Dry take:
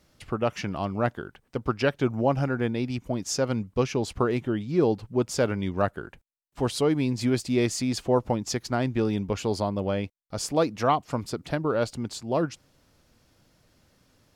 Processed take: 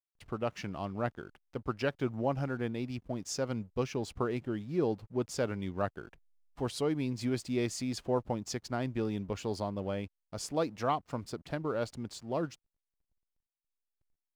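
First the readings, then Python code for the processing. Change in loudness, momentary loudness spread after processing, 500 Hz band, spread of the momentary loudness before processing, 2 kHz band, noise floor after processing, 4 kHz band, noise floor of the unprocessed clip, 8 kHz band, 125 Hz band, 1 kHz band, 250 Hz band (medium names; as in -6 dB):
-8.0 dB, 7 LU, -8.0 dB, 7 LU, -8.0 dB, under -85 dBFS, -8.5 dB, -66 dBFS, -8.5 dB, -8.0 dB, -8.0 dB, -8.0 dB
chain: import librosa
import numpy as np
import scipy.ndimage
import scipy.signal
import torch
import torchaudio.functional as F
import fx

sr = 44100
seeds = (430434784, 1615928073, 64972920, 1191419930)

y = fx.backlash(x, sr, play_db=-46.5)
y = F.gain(torch.from_numpy(y), -8.0).numpy()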